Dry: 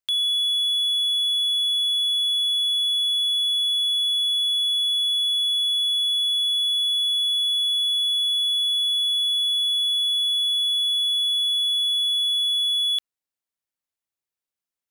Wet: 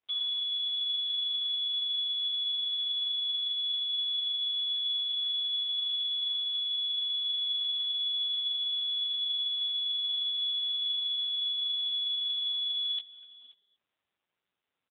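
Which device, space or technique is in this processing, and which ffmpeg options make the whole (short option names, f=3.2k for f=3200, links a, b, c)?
satellite phone: -filter_complex "[0:a]adynamicequalizer=threshold=0.0126:dfrequency=2700:dqfactor=3:tfrequency=2700:tqfactor=3:attack=5:release=100:ratio=0.375:range=2:mode=boostabove:tftype=bell,highpass=310,lowpass=3k,asplit=2[a][b];[b]adelay=244.9,volume=-18dB,highshelf=f=4k:g=-5.51[c];[a][c]amix=inputs=2:normalize=0,aecho=1:1:530:0.0841" -ar 8000 -c:a libopencore_amrnb -b:a 5900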